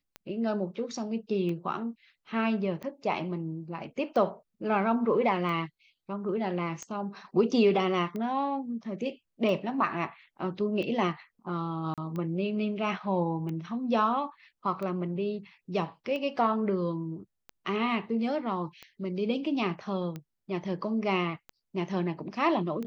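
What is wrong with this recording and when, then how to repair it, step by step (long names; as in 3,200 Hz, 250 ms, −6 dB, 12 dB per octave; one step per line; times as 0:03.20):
scratch tick 45 rpm −25 dBFS
0:11.94–0:11.98: drop-out 37 ms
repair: click removal
repair the gap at 0:11.94, 37 ms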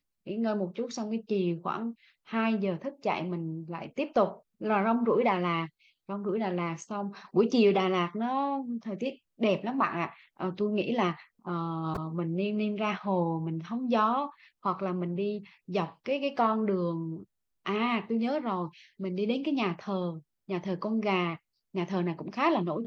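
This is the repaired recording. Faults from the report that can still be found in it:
none of them is left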